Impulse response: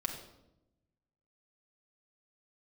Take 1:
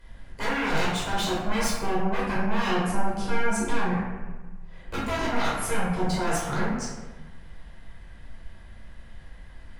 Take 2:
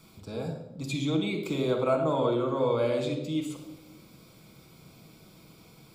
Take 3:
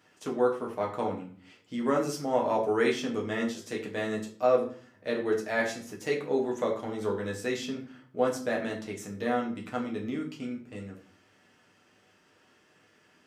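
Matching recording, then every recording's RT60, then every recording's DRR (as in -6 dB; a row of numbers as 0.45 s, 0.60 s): 2; 1.3 s, 0.90 s, 0.45 s; -8.0 dB, 1.0 dB, -1.5 dB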